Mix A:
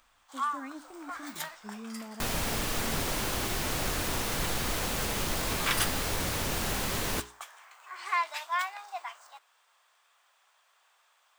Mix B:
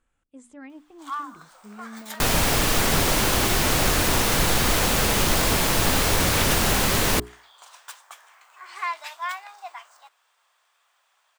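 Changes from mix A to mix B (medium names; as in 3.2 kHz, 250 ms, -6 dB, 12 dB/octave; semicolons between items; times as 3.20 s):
first sound: entry +0.70 s; second sound +10.5 dB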